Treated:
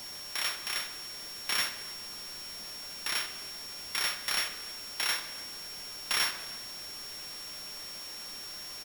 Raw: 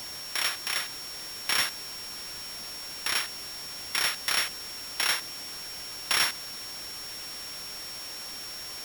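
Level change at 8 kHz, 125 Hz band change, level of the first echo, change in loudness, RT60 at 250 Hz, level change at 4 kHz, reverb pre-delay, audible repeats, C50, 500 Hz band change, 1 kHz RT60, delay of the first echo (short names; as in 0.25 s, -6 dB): -4.0 dB, -4.5 dB, -21.0 dB, -3.5 dB, 1.8 s, -3.5 dB, 3 ms, 1, 9.5 dB, -4.0 dB, 1.0 s, 0.293 s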